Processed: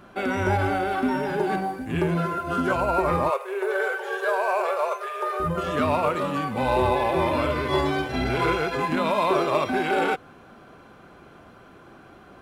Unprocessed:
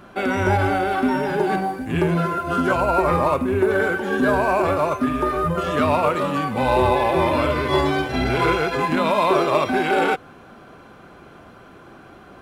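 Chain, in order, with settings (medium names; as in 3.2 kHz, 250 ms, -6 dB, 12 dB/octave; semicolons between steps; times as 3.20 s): 3.30–5.40 s: brick-wall FIR high-pass 380 Hz; trim -4 dB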